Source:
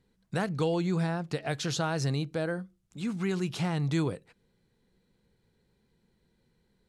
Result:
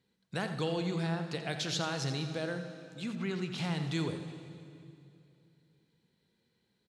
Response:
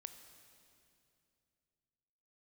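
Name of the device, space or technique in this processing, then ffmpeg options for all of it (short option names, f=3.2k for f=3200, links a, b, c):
PA in a hall: -filter_complex "[0:a]highpass=100,equalizer=f=3.5k:t=o:w=1.6:g=7,aecho=1:1:85:0.266[a];[1:a]atrim=start_sample=2205[b];[a][b]afir=irnorm=-1:irlink=0,asettb=1/sr,asplit=3[c][d][e];[c]atrim=end=3.154[f];[d]atrim=start=3.15:end=3.58,asetpts=PTS-STARTPTS,afade=t=in:d=0.004:c=qsin,afade=t=out:st=0.426:d=0.004:c=qsin,highshelf=f=6.2k:g=-11.5[g];[e]atrim=start=3.576[h];[f][g]acrossfade=d=0.004:c1=hsin:c2=qsin[i];[i][h]acrossfade=d=0.004:c1=qsin:c2=hsin"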